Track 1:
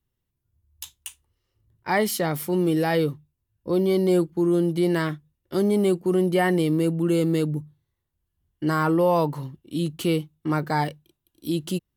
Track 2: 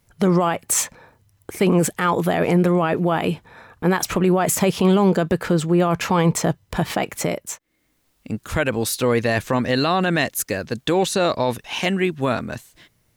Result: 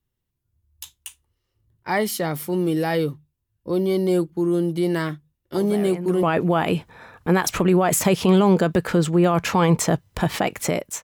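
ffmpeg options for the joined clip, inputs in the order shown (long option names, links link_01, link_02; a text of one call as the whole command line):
ffmpeg -i cue0.wav -i cue1.wav -filter_complex "[1:a]asplit=2[link_01][link_02];[0:a]apad=whole_dur=11.03,atrim=end=11.03,atrim=end=6.232[link_03];[link_02]atrim=start=2.788:end=7.59[link_04];[link_01]atrim=start=2.11:end=2.79,asetpts=PTS-STARTPTS,volume=-14dB,afade=type=in:duration=0.004:curve=hsin,afade=type=out:start_time=0.676:duration=0.004:curve=hsin,adelay=5550[link_05];[link_03][link_04]acrossfade=duration=0.004:curve1=hsin:curve2=hsin[link_06];[link_06][link_05]amix=inputs=2:normalize=0" out.wav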